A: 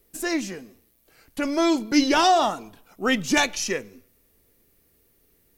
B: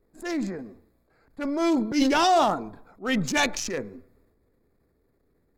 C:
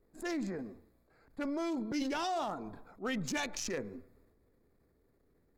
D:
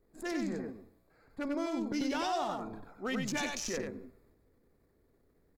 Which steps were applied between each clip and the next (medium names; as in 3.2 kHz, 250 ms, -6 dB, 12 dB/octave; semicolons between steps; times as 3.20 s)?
local Wiener filter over 15 samples; transient shaper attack -8 dB, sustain +7 dB; trim -1 dB
compression 6:1, threshold -30 dBFS, peak gain reduction 12.5 dB; trim -3 dB
delay 94 ms -4 dB